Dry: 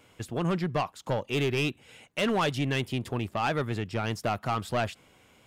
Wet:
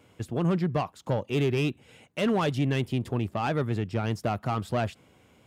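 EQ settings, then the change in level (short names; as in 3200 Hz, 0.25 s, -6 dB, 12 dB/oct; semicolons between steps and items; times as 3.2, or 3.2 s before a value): HPF 50 Hz; tilt shelf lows +4 dB, about 670 Hz; 0.0 dB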